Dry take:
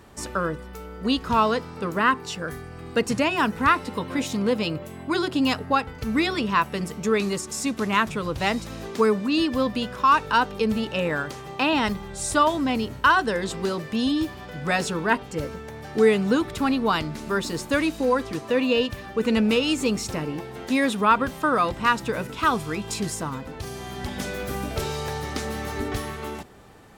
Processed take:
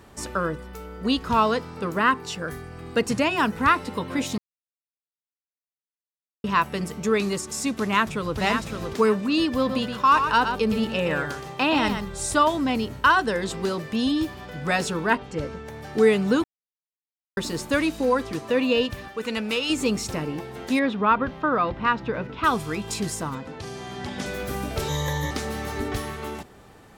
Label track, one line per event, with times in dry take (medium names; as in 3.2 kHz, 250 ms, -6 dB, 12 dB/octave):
4.380000	6.440000	mute
7.810000	8.370000	echo throw 560 ms, feedback 25%, level -6 dB
9.570000	12.260000	delay 120 ms -7.5 dB
15.150000	15.660000	distance through air 63 m
16.440000	17.370000	mute
19.080000	19.700000	bass shelf 490 Hz -11.5 dB
20.790000	22.440000	distance through air 260 m
23.350000	24.260000	band-pass 100–7400 Hz
24.880000	25.310000	rippled EQ curve crests per octave 1.1, crest to trough 16 dB